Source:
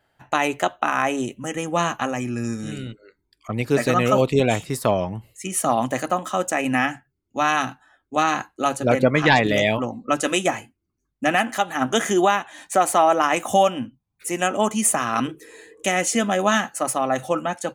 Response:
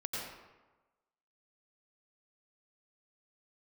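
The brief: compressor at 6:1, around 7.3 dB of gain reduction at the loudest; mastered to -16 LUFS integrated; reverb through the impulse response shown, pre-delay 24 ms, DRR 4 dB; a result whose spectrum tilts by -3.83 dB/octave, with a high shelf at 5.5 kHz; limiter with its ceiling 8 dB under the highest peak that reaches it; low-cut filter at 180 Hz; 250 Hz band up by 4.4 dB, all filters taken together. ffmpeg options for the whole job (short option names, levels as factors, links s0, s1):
-filter_complex "[0:a]highpass=180,equalizer=f=250:t=o:g=6.5,highshelf=f=5500:g=4,acompressor=threshold=0.126:ratio=6,alimiter=limit=0.211:level=0:latency=1,asplit=2[s0][s1];[1:a]atrim=start_sample=2205,adelay=24[s2];[s1][s2]afir=irnorm=-1:irlink=0,volume=0.473[s3];[s0][s3]amix=inputs=2:normalize=0,volume=2.51"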